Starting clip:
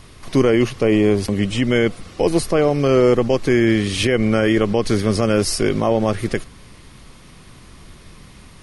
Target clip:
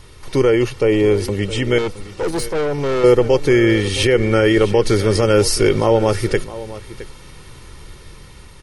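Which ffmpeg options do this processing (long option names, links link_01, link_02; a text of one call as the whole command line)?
ffmpeg -i in.wav -filter_complex "[0:a]aecho=1:1:2.2:0.53,asplit=2[link_01][link_02];[link_02]aecho=0:1:665:0.158[link_03];[link_01][link_03]amix=inputs=2:normalize=0,asettb=1/sr,asplit=3[link_04][link_05][link_06];[link_04]atrim=end=1.784[link_07];[link_05]atrim=start=1.78:end=3.04,asetpts=PTS-STARTPTS,afade=type=in:duration=0.004:curve=qsin,afade=type=out:start_time=1.256:duration=0.004:curve=qsin,aeval=exprs='(tanh(7.94*val(0)+0.35)-tanh(0.35))/7.94':channel_layout=same[link_08];[link_06]atrim=start=3.036[link_09];[link_07][link_08]acrossfade=duration=0.004:curve1=hsin:curve2=qsin[link_10];[link_10][link_09]acrossfade=duration=0.004:curve1=qsin:curve2=hsin,dynaudnorm=framelen=360:gausssize=9:maxgain=11.5dB,volume=-1dB" out.wav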